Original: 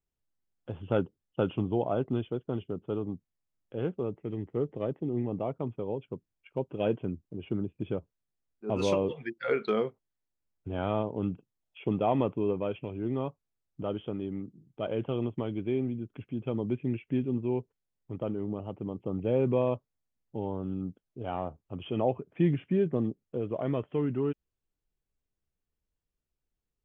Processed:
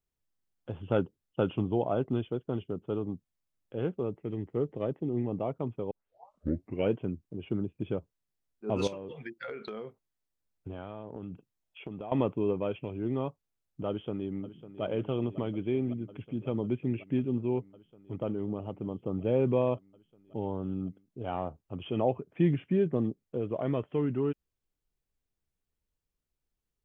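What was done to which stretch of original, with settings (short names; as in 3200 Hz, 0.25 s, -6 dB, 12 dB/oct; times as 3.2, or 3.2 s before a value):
5.91 tape start 1.01 s
8.87–12.12 compressor 16:1, threshold -35 dBFS
13.88–14.83 echo throw 0.55 s, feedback 85%, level -14 dB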